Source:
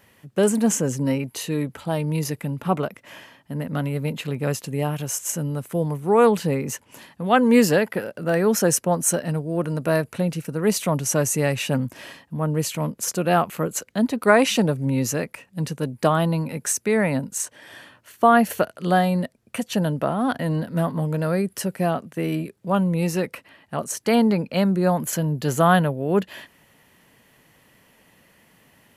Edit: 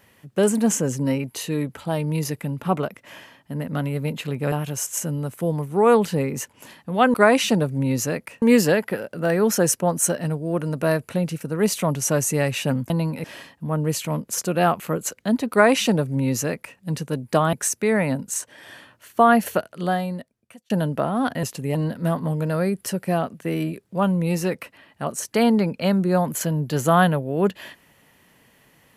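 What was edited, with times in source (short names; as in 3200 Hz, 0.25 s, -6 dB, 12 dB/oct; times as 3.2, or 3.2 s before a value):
4.52–4.84 move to 20.47
14.21–15.49 copy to 7.46
16.23–16.57 move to 11.94
18.48–19.74 fade out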